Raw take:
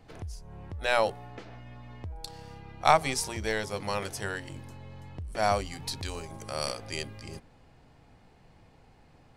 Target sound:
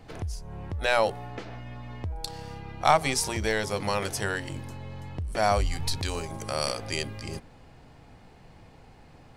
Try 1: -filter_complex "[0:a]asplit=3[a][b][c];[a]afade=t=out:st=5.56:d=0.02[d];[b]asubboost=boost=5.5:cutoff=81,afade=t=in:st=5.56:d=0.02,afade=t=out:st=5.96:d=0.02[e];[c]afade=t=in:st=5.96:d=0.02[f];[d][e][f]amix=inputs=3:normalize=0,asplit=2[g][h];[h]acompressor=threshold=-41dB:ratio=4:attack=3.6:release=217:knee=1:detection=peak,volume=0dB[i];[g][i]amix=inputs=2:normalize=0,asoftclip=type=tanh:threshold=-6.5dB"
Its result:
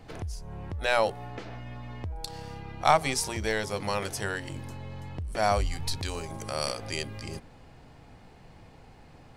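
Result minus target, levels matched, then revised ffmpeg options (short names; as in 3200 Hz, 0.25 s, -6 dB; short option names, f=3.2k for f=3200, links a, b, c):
compressor: peak gain reduction +8 dB
-filter_complex "[0:a]asplit=3[a][b][c];[a]afade=t=out:st=5.56:d=0.02[d];[b]asubboost=boost=5.5:cutoff=81,afade=t=in:st=5.56:d=0.02,afade=t=out:st=5.96:d=0.02[e];[c]afade=t=in:st=5.96:d=0.02[f];[d][e][f]amix=inputs=3:normalize=0,asplit=2[g][h];[h]acompressor=threshold=-30.5dB:ratio=4:attack=3.6:release=217:knee=1:detection=peak,volume=0dB[i];[g][i]amix=inputs=2:normalize=0,asoftclip=type=tanh:threshold=-6.5dB"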